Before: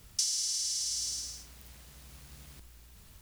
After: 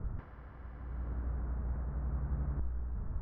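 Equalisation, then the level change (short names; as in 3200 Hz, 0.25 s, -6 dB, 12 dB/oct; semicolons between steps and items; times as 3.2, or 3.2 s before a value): steep low-pass 1500 Hz 36 dB/oct; tilt -2 dB/oct; +10.5 dB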